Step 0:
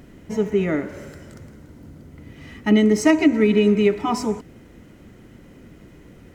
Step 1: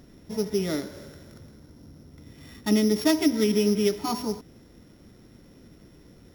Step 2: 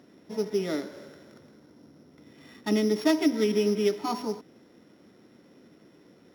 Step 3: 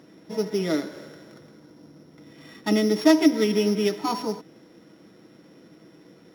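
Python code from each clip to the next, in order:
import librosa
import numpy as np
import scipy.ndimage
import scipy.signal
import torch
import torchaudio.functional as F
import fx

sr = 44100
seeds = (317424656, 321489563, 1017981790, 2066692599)

y1 = np.r_[np.sort(x[:len(x) // 8 * 8].reshape(-1, 8), axis=1).ravel(), x[len(x) // 8 * 8:]]
y1 = F.gain(torch.from_numpy(y1), -6.0).numpy()
y2 = scipy.signal.sosfilt(scipy.signal.butter(2, 240.0, 'highpass', fs=sr, output='sos'), y1)
y2 = fx.high_shelf(y2, sr, hz=6100.0, db=-12.0)
y3 = y2 + 0.39 * np.pad(y2, (int(6.2 * sr / 1000.0), 0))[:len(y2)]
y3 = F.gain(torch.from_numpy(y3), 4.0).numpy()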